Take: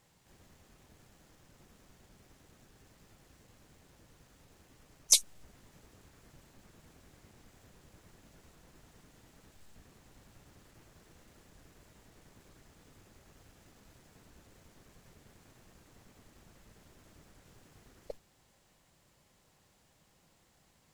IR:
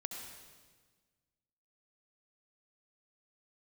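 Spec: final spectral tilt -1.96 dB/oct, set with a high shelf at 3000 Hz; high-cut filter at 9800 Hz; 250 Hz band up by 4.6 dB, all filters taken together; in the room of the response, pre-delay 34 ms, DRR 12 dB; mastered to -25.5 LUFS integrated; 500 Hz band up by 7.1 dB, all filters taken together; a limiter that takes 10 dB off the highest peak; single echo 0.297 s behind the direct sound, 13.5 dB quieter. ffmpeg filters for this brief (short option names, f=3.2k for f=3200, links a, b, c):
-filter_complex "[0:a]lowpass=9.8k,equalizer=f=250:t=o:g=4,equalizer=f=500:t=o:g=7,highshelf=f=3k:g=8,alimiter=limit=-11dB:level=0:latency=1,aecho=1:1:297:0.211,asplit=2[a][b];[1:a]atrim=start_sample=2205,adelay=34[c];[b][c]afir=irnorm=-1:irlink=0,volume=-11dB[d];[a][d]amix=inputs=2:normalize=0,volume=6dB"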